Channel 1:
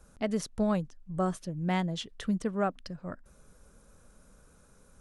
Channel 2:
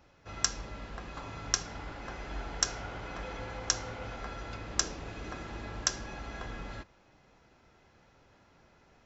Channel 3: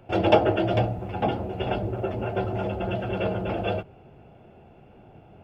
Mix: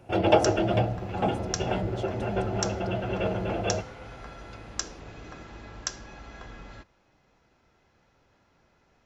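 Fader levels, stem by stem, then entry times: -9.5, -3.0, -1.5 dB; 0.00, 0.00, 0.00 s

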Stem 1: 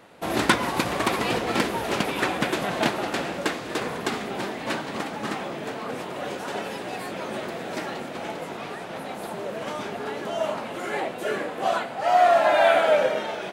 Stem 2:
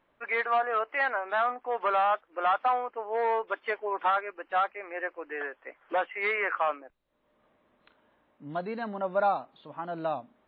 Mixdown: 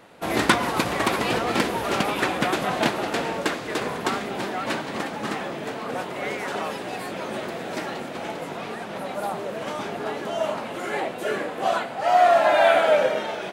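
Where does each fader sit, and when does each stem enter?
+1.0, -5.5 dB; 0.00, 0.00 s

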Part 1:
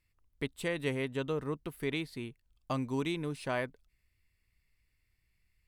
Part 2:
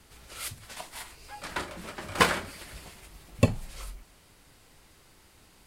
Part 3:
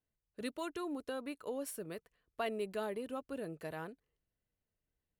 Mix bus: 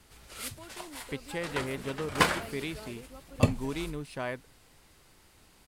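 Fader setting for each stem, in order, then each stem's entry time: -1.5, -2.0, -9.0 dB; 0.70, 0.00, 0.00 s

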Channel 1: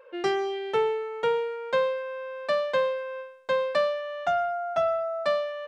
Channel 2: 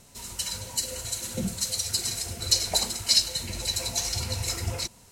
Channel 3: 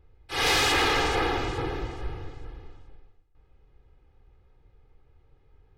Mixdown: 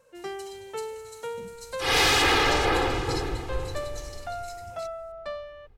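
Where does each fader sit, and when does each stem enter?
-10.0, -17.5, +2.0 dB; 0.00, 0.00, 1.50 s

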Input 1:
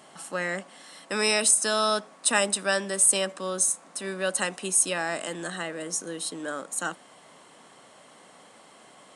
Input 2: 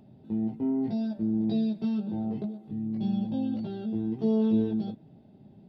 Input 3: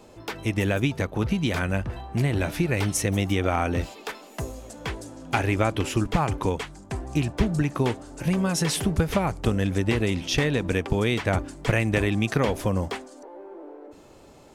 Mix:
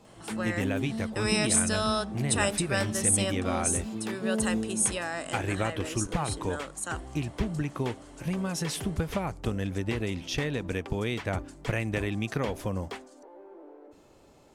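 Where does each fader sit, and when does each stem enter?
-4.5, -5.5, -7.0 dB; 0.05, 0.00, 0.00 s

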